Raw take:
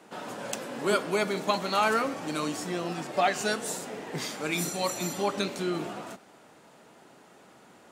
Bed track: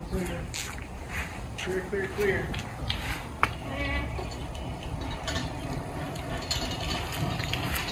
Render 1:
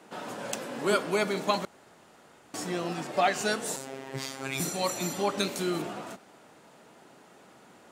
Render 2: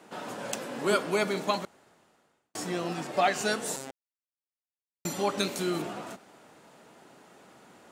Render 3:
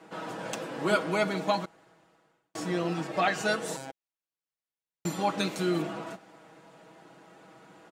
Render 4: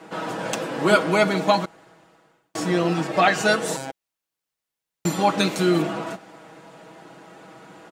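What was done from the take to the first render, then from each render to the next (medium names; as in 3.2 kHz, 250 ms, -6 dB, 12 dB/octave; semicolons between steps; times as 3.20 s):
1.65–2.54 s: room tone; 3.76–4.60 s: robot voice 134 Hz; 5.39–5.82 s: treble shelf 7.6 kHz +12 dB
1.34–2.55 s: fade out; 3.91–5.05 s: mute
treble shelf 5.7 kHz -10 dB; comb 6.2 ms
trim +8.5 dB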